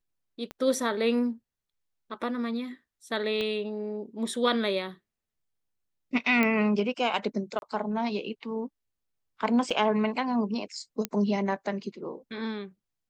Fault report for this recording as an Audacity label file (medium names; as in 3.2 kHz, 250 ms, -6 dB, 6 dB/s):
0.510000	0.510000	pop -23 dBFS
3.410000	3.410000	pop -20 dBFS
6.430000	6.430000	pop -12 dBFS
7.590000	7.620000	dropout 31 ms
9.700000	9.710000	dropout 5.3 ms
11.050000	11.050000	pop -13 dBFS